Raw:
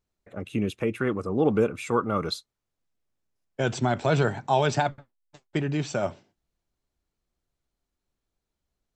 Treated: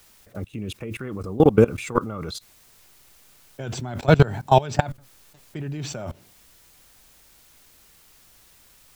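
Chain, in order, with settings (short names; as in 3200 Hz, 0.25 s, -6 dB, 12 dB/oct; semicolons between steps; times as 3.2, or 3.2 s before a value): requantised 10-bit, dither triangular; level quantiser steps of 21 dB; low shelf 120 Hz +12 dB; gain +8 dB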